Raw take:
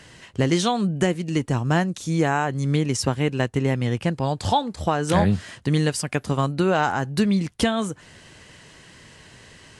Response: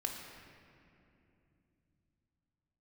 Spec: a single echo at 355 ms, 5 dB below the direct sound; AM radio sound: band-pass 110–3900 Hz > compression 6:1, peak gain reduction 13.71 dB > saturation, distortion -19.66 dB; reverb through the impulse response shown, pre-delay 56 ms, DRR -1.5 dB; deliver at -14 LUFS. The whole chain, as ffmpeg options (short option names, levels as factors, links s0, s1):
-filter_complex "[0:a]aecho=1:1:355:0.562,asplit=2[s0][s1];[1:a]atrim=start_sample=2205,adelay=56[s2];[s1][s2]afir=irnorm=-1:irlink=0,volume=1[s3];[s0][s3]amix=inputs=2:normalize=0,highpass=110,lowpass=3900,acompressor=threshold=0.0501:ratio=6,asoftclip=threshold=0.0891,volume=7.08"